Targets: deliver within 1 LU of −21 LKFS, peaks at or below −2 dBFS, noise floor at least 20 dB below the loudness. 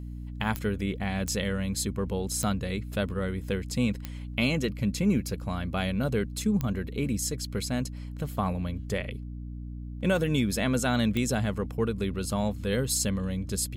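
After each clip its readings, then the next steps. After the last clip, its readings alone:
number of clicks 6; mains hum 60 Hz; hum harmonics up to 300 Hz; level of the hum −35 dBFS; integrated loudness −29.5 LKFS; sample peak −13.0 dBFS; target loudness −21.0 LKFS
→ click removal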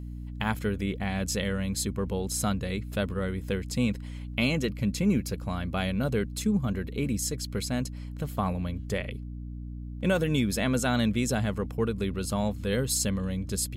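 number of clicks 0; mains hum 60 Hz; hum harmonics up to 300 Hz; level of the hum −35 dBFS
→ hum removal 60 Hz, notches 5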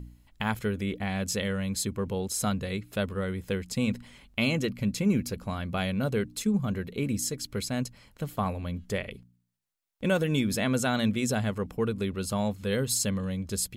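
mains hum none found; integrated loudness −30.0 LKFS; sample peak −13.5 dBFS; target loudness −21.0 LKFS
→ level +9 dB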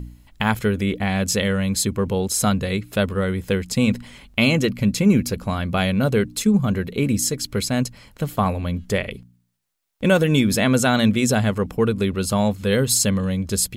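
integrated loudness −21.0 LKFS; sample peak −4.5 dBFS; background noise floor −56 dBFS

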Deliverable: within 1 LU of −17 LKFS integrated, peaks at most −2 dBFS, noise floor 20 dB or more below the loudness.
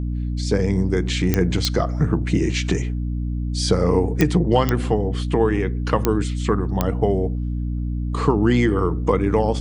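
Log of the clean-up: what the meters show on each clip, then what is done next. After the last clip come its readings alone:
number of clicks 6; mains hum 60 Hz; hum harmonics up to 300 Hz; level of the hum −21 dBFS; integrated loudness −21.0 LKFS; sample peak −3.5 dBFS; target loudness −17.0 LKFS
→ click removal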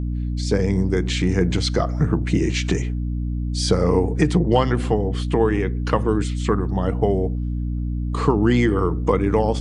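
number of clicks 0; mains hum 60 Hz; hum harmonics up to 300 Hz; level of the hum −21 dBFS
→ mains-hum notches 60/120/180/240/300 Hz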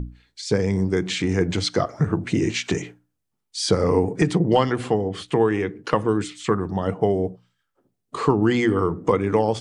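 mains hum none found; integrated loudness −22.5 LKFS; sample peak −5.0 dBFS; target loudness −17.0 LKFS
→ level +5.5 dB
brickwall limiter −2 dBFS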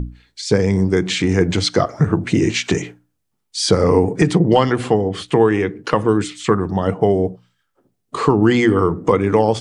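integrated loudness −17.0 LKFS; sample peak −2.0 dBFS; background noise floor −72 dBFS

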